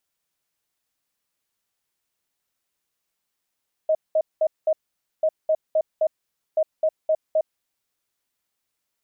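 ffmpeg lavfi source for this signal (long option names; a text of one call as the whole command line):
ffmpeg -f lavfi -i "aevalsrc='0.158*sin(2*PI*629*t)*clip(min(mod(mod(t,1.34),0.26),0.06-mod(mod(t,1.34),0.26))/0.005,0,1)*lt(mod(t,1.34),1.04)':duration=4.02:sample_rate=44100" out.wav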